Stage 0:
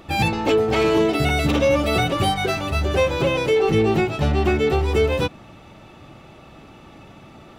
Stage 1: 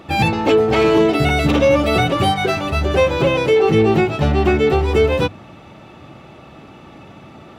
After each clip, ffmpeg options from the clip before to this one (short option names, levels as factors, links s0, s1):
-af "highpass=63,highshelf=f=4900:g=-6.5,bandreject=f=50:t=h:w=6,bandreject=f=100:t=h:w=6,volume=1.68"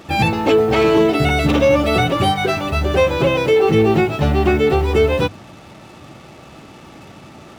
-af "acrusher=bits=6:mix=0:aa=0.5"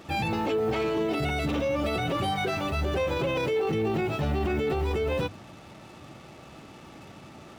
-af "alimiter=limit=0.224:level=0:latency=1:release=19,volume=0.447"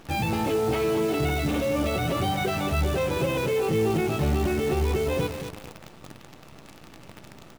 -af "lowshelf=f=270:g=4.5,aecho=1:1:224|448|672|896:0.335|0.117|0.041|0.0144,acrusher=bits=7:dc=4:mix=0:aa=0.000001"